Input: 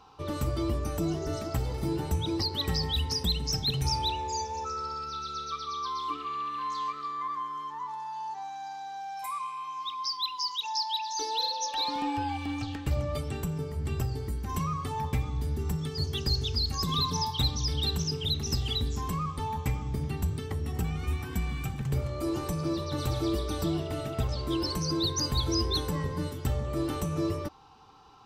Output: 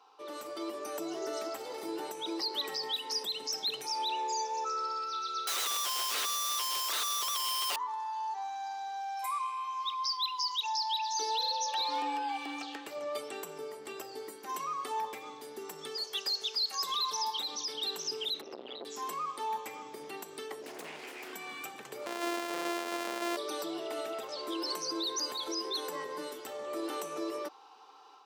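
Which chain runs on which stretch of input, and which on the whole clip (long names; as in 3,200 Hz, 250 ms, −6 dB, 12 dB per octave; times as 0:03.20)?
0:05.47–0:07.76: mid-hump overdrive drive 25 dB, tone 1,600 Hz, clips at −21.5 dBFS + wrap-around overflow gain 29.5 dB
0:15.96–0:17.24: high-pass filter 190 Hz + parametric band 290 Hz −12.5 dB 1.1 octaves
0:18.41–0:18.85: high-frequency loss of the air 390 metres + saturating transformer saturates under 440 Hz
0:20.62–0:21.33: lower of the sound and its delayed copy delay 0.41 ms + hum removal 59.97 Hz, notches 28 + highs frequency-modulated by the lows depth 0.72 ms
0:22.06–0:23.37: samples sorted by size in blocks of 128 samples + high-shelf EQ 6,700 Hz −5 dB
whole clip: brickwall limiter −24.5 dBFS; automatic gain control gain up to 6 dB; high-pass filter 370 Hz 24 dB per octave; level −5.5 dB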